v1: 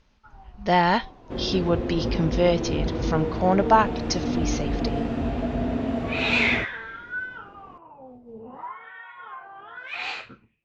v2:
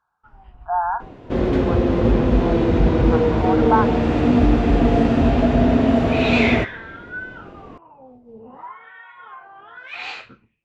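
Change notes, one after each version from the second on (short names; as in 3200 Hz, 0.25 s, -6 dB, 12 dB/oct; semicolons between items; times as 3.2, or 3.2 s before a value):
speech: add brick-wall FIR band-pass 670–1700 Hz; second sound +10.5 dB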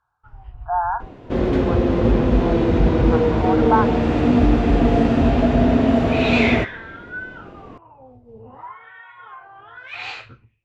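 first sound: add resonant low shelf 140 Hz +6.5 dB, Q 3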